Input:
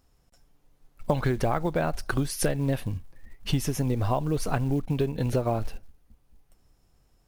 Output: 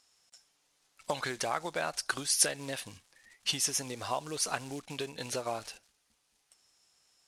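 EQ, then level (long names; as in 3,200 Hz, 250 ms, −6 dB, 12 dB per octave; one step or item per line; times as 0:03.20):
meter weighting curve ITU-R 468
dynamic equaliser 2,800 Hz, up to −3 dB, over −44 dBFS, Q 0.72
−3.0 dB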